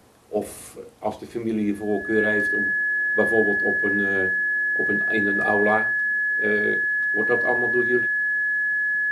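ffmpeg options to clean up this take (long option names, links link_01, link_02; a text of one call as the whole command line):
ffmpeg -i in.wav -af "bandreject=frequency=1700:width=30" out.wav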